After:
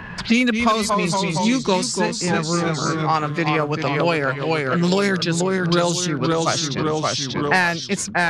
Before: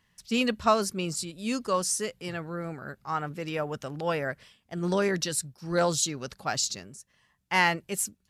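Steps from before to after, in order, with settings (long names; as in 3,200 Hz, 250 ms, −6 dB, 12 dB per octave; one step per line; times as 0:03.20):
in parallel at −4 dB: gain into a clipping stage and back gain 16.5 dB
on the sum: low-pass that shuts in the quiet parts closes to 1,900 Hz, open at −17 dBFS
formants moved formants −2 semitones
delay with pitch and tempo change per echo 189 ms, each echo −1 semitone, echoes 3, each echo −6 dB
multiband upward and downward compressor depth 100%
level +4 dB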